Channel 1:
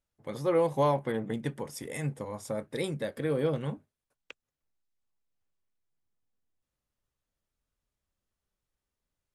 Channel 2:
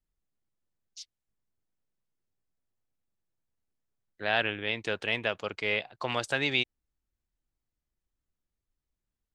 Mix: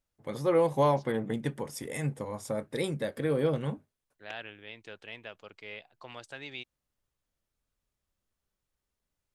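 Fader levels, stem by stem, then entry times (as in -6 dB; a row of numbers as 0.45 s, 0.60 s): +1.0 dB, -14.5 dB; 0.00 s, 0.00 s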